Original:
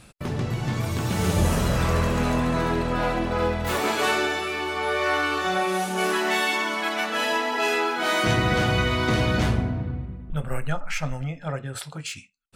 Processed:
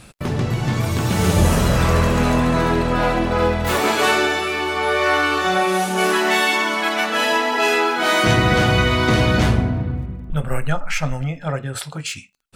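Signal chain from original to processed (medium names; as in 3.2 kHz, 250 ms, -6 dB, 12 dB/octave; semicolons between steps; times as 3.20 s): crackle 39 per s -52 dBFS; trim +6 dB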